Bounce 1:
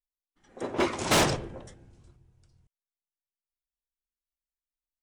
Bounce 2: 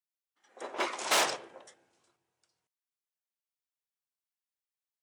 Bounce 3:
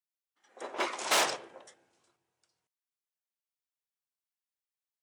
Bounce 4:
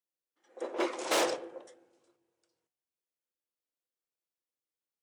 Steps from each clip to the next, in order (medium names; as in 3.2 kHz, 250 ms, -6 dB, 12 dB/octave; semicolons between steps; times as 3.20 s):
high-pass 620 Hz 12 dB/octave; trim -2 dB
no audible change
small resonant body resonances 340/490 Hz, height 13 dB, ringing for 35 ms; reverberation RT60 1.0 s, pre-delay 3 ms, DRR 18 dB; trim -4.5 dB